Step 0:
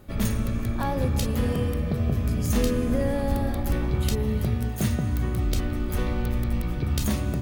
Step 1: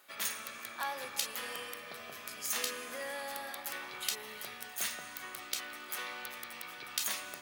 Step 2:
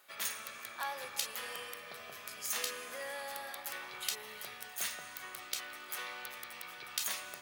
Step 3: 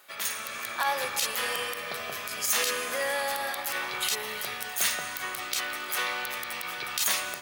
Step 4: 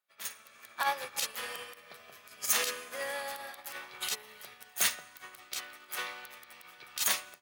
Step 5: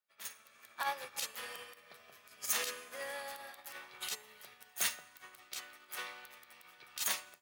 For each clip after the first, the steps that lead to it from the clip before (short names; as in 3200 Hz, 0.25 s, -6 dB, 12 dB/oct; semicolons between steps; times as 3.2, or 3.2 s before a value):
HPF 1300 Hz 12 dB/oct
bell 260 Hz -7.5 dB 0.51 oct; gain -1.5 dB
limiter -27 dBFS, peak gain reduction 10.5 dB; AGC gain up to 5.5 dB; gain +7.5 dB
upward expander 2.5:1, over -45 dBFS
resonator 910 Hz, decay 0.37 s, mix 60%; gain +2 dB